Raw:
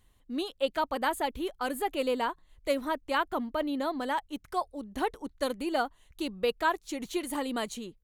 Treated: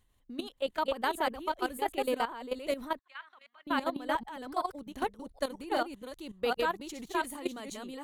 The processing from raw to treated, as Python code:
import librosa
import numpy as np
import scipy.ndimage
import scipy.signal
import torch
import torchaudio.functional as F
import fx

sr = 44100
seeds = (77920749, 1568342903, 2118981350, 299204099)

y = fx.reverse_delay(x, sr, ms=385, wet_db=-2.0)
y = fx.ladder_bandpass(y, sr, hz=2300.0, resonance_pct=25, at=(2.99, 3.67))
y = fx.level_steps(y, sr, step_db=14)